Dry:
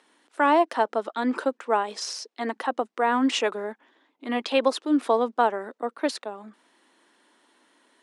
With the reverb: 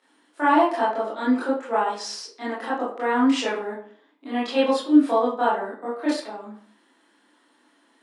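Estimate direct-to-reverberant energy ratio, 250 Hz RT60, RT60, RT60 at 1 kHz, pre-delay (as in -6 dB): -9.5 dB, 0.55 s, 0.50 s, 0.50 s, 19 ms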